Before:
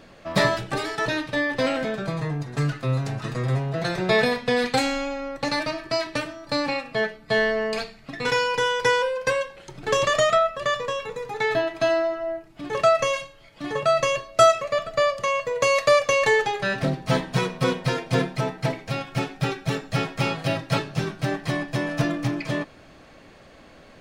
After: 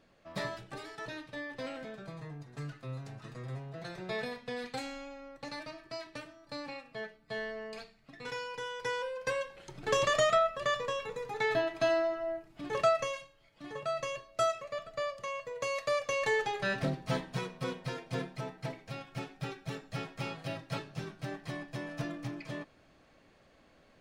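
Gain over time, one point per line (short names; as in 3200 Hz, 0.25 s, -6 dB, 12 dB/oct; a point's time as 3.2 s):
8.69 s -17 dB
9.62 s -7 dB
12.8 s -7 dB
13.2 s -14.5 dB
15.86 s -14.5 dB
16.71 s -7 dB
17.5 s -14 dB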